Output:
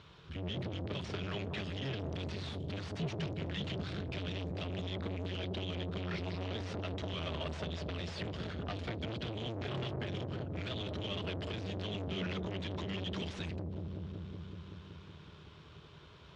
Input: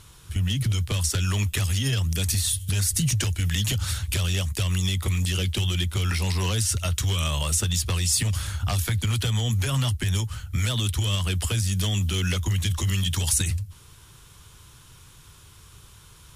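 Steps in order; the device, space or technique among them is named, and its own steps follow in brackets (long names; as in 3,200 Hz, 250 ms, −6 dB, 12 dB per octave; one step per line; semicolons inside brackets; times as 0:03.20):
analogue delay pedal into a guitar amplifier (bucket-brigade delay 187 ms, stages 1,024, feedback 75%, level −4 dB; tube saturation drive 32 dB, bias 0.4; loudspeaker in its box 90–4,000 Hz, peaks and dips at 110 Hz −7 dB, 170 Hz +4 dB, 410 Hz +5 dB, 620 Hz +6 dB)
level −2.5 dB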